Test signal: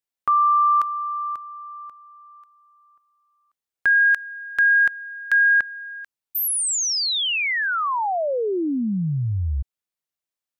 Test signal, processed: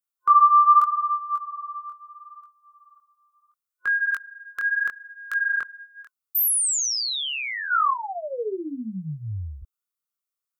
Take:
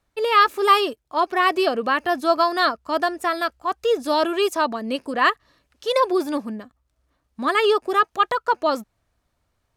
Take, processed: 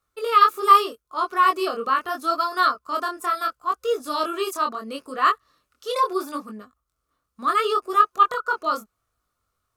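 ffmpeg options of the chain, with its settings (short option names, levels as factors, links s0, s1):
-af "superequalizer=7b=1.58:10b=3.55,crystalizer=i=2:c=0,flanger=delay=19:depth=7.1:speed=0.75,volume=0.501"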